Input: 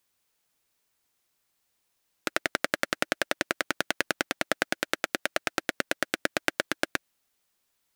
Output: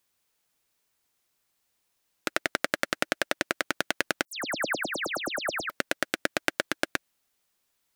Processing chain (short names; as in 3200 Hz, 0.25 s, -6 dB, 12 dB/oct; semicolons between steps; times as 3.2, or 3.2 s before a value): 4.25–5.7 dispersion lows, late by 0.13 s, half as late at 2800 Hz